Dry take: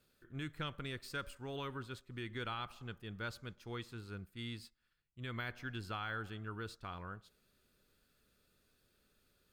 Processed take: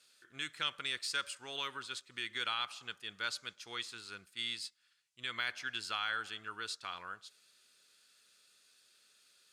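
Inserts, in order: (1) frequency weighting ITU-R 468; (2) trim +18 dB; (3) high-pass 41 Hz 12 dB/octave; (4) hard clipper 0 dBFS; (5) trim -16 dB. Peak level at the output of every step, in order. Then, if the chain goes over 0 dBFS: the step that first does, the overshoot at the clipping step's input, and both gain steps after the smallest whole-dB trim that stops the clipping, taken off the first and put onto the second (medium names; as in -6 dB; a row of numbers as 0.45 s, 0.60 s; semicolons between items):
-23.0 dBFS, -5.0 dBFS, -5.0 dBFS, -5.0 dBFS, -21.0 dBFS; nothing clips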